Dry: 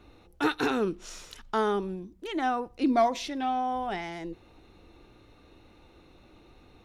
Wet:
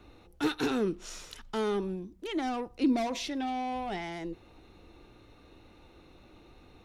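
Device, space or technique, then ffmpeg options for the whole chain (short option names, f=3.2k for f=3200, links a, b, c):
one-band saturation: -filter_complex "[0:a]acrossover=split=430|2800[a][b][c];[b]asoftclip=type=tanh:threshold=-35dB[d];[a][d][c]amix=inputs=3:normalize=0"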